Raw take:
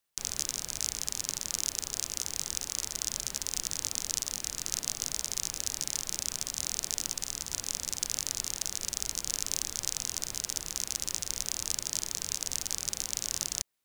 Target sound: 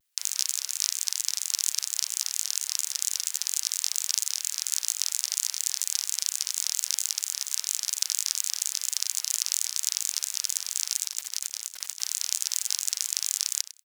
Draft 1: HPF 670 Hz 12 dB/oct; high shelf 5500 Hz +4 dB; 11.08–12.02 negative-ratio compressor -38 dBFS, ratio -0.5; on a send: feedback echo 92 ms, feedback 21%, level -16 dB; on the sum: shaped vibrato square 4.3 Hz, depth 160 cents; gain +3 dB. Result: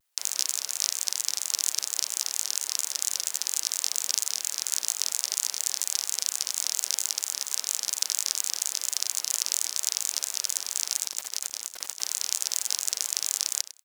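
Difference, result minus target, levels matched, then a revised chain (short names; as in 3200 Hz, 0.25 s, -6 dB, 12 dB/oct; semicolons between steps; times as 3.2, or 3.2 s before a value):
500 Hz band +13.0 dB
HPF 1600 Hz 12 dB/oct; high shelf 5500 Hz +4 dB; 11.08–12.02 negative-ratio compressor -38 dBFS, ratio -0.5; on a send: feedback echo 92 ms, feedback 21%, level -16 dB; on the sum: shaped vibrato square 4.3 Hz, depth 160 cents; gain +3 dB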